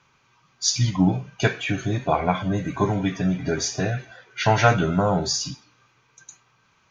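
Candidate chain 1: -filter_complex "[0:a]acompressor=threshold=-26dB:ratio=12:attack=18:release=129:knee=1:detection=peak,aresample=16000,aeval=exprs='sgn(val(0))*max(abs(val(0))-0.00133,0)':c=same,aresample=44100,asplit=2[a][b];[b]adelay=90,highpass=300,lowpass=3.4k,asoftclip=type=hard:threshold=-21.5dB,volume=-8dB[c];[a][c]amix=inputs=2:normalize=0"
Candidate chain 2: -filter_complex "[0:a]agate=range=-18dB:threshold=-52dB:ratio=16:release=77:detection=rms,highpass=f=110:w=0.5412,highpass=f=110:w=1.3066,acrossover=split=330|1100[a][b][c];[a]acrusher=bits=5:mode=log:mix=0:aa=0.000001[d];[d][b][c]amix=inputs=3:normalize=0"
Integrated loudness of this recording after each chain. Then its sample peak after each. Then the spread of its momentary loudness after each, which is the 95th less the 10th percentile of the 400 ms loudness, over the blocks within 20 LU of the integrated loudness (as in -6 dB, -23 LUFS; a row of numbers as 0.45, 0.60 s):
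-29.0, -23.5 LUFS; -11.5, -4.5 dBFS; 10, 8 LU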